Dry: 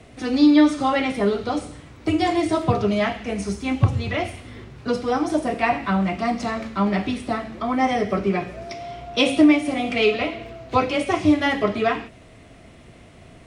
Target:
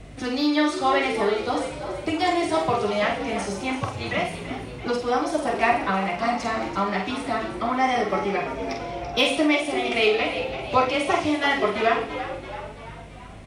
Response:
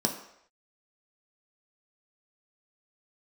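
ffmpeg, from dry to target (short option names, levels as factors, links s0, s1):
-filter_complex "[0:a]asplit=7[s0][s1][s2][s3][s4][s5][s6];[s1]adelay=336,afreqshift=76,volume=0.266[s7];[s2]adelay=672,afreqshift=152,volume=0.141[s8];[s3]adelay=1008,afreqshift=228,volume=0.075[s9];[s4]adelay=1344,afreqshift=304,volume=0.0398[s10];[s5]adelay=1680,afreqshift=380,volume=0.0209[s11];[s6]adelay=2016,afreqshift=456,volume=0.0111[s12];[s0][s7][s8][s9][s10][s11][s12]amix=inputs=7:normalize=0,aeval=exprs='val(0)+0.00708*(sin(2*PI*50*n/s)+sin(2*PI*2*50*n/s)/2+sin(2*PI*3*50*n/s)/3+sin(2*PI*4*50*n/s)/4+sin(2*PI*5*50*n/s)/5)':c=same,asplit=2[s13][s14];[s14]adelay=47,volume=0.531[s15];[s13][s15]amix=inputs=2:normalize=0,acrossover=split=440|3400[s16][s17][s18];[s16]acompressor=threshold=0.0316:ratio=6[s19];[s18]asoftclip=type=tanh:threshold=0.0668[s20];[s19][s17][s20]amix=inputs=3:normalize=0"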